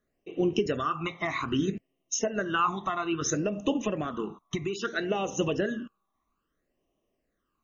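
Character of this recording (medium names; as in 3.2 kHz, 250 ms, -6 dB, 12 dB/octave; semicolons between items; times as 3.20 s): phasing stages 12, 0.61 Hz, lowest notch 490–1500 Hz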